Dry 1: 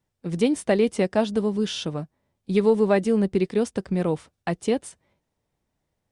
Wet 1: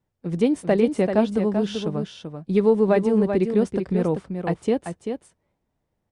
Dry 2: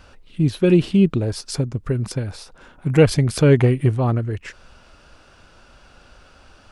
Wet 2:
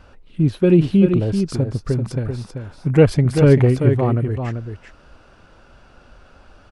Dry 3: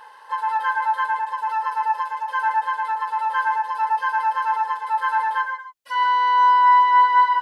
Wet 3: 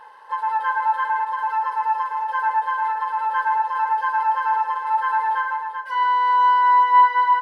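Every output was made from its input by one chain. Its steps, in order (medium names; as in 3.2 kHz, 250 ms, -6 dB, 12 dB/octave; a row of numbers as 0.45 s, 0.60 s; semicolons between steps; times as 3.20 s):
treble shelf 2.3 kHz -9.5 dB; delay 388 ms -7 dB; trim +1.5 dB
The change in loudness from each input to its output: +1.5 LU, +1.5 LU, 0.0 LU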